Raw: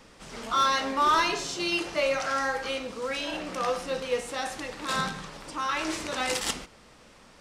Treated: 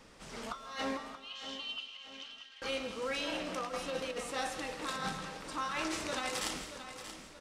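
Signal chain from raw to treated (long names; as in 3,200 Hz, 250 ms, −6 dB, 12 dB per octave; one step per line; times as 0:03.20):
compressor whose output falls as the input rises −30 dBFS, ratio −0.5
0:01.15–0:02.62: four-pole ladder band-pass 3,200 Hz, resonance 85%
repeating echo 630 ms, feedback 42%, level −11 dB
on a send at −11 dB: convolution reverb RT60 0.70 s, pre-delay 119 ms
on the sum: level −7 dB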